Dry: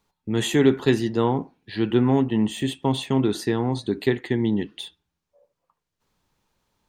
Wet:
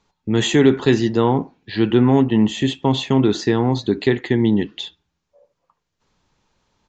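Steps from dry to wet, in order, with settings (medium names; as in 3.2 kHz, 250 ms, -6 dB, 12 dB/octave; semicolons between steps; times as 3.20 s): in parallel at 0 dB: peak limiter -12.5 dBFS, peak gain reduction 7.5 dB; on the sum: resampled via 16 kHz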